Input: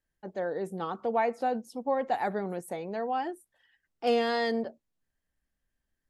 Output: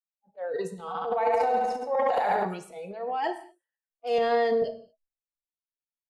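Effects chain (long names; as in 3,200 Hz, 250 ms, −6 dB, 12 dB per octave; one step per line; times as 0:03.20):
low-pass that shuts in the quiet parts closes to 1,300 Hz, open at −26 dBFS
0:04.18–0:04.62: RIAA equalisation playback
noise reduction from a noise print of the clip's start 25 dB
low shelf with overshoot 410 Hz −7 dB, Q 3
0:00.77–0:02.45: flutter between parallel walls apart 11.8 metres, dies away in 1 s
brickwall limiter −18 dBFS, peak gain reduction 6 dB
transient designer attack −7 dB, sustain +12 dB
reverb whose tail is shaped and stops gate 260 ms falling, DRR 8 dB
multiband upward and downward expander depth 40%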